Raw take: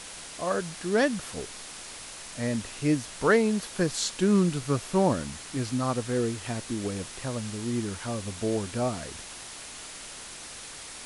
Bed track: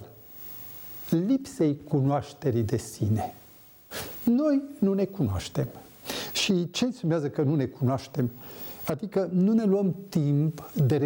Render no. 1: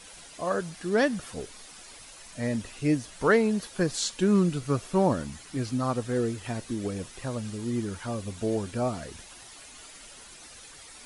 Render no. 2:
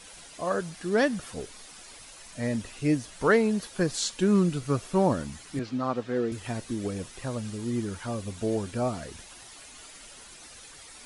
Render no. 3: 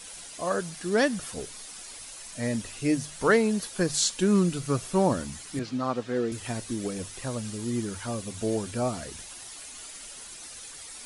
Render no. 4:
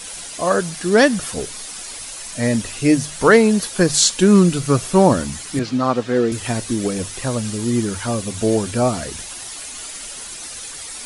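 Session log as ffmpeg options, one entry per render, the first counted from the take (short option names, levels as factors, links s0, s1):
-af "afftdn=nr=10:nf=-43"
-filter_complex "[0:a]asettb=1/sr,asplit=3[s0][s1][s2];[s0]atrim=end=5.594[s3];[s1]atrim=start=5.59:end=6.32,asetpts=PTS-STARTPTS,afade=t=in:d=0.004:c=qsin,afade=t=out:st=0.726:d=0.004:c=qsin,highpass=180,lowpass=3900[s4];[s2]atrim=start=6.316[s5];[s3][s4]acrossfade=d=0.004:c1=hsin:c2=qsin[s6];[s6][s5]acrossfade=d=0.004:c1=qsin:c2=hsin"
-af "highshelf=f=5000:g=8.5,bandreject=f=50:t=h:w=6,bandreject=f=100:t=h:w=6,bandreject=f=150:t=h:w=6"
-af "volume=3.35,alimiter=limit=0.891:level=0:latency=1"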